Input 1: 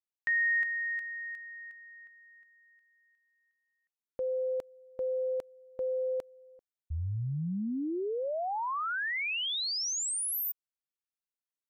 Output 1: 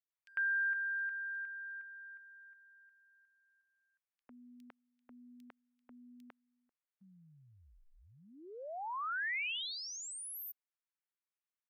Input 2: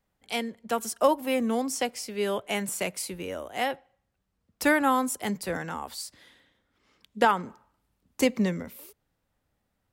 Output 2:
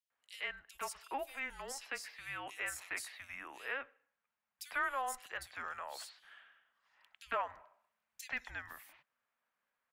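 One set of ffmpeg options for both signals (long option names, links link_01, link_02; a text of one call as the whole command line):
ffmpeg -i in.wav -filter_complex "[0:a]afreqshift=-270,acrossover=split=530 2400:gain=0.0708 1 0.0794[link_01][link_02][link_03];[link_01][link_02][link_03]amix=inputs=3:normalize=0,acompressor=threshold=-44dB:ratio=1.5:attack=1.7:release=110:detection=peak,tiltshelf=frequency=1500:gain=-8.5,acrossover=split=3500[link_04][link_05];[link_04]adelay=100[link_06];[link_06][link_05]amix=inputs=2:normalize=0,volume=1.5dB" out.wav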